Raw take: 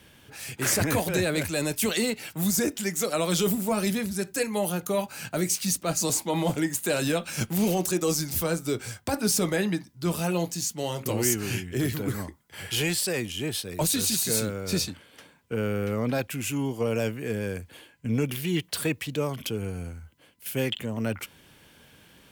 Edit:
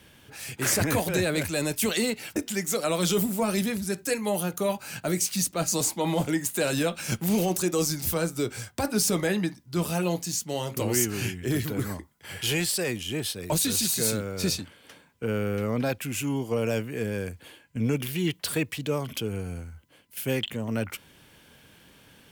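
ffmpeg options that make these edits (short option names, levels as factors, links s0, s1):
-filter_complex "[0:a]asplit=2[s0][s1];[s0]atrim=end=2.362[s2];[s1]atrim=start=2.648[s3];[s2][s3]acrossfade=d=0.004:c1=hsin:c2=hsin"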